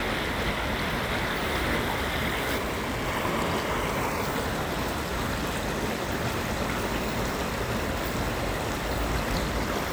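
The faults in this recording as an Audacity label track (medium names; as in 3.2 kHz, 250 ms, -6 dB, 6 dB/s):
2.570000	3.080000	clipped -26 dBFS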